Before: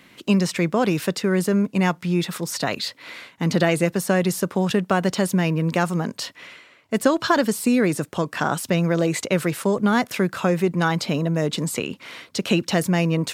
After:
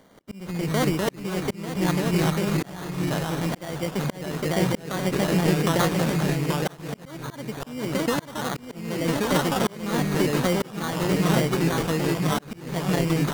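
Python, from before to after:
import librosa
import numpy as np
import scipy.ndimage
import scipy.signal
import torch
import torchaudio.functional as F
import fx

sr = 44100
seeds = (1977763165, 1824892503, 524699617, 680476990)

p1 = x + fx.echo_single(x, sr, ms=893, db=-4.0, dry=0)
p2 = fx.rev_schroeder(p1, sr, rt60_s=3.6, comb_ms=38, drr_db=19.0)
p3 = fx.sample_hold(p2, sr, seeds[0], rate_hz=2600.0, jitter_pct=0)
p4 = fx.echo_pitch(p3, sr, ms=158, semitones=-2, count=2, db_per_echo=-3.0)
p5 = fx.auto_swell(p4, sr, attack_ms=491.0)
y = p5 * librosa.db_to_amplitude(-4.0)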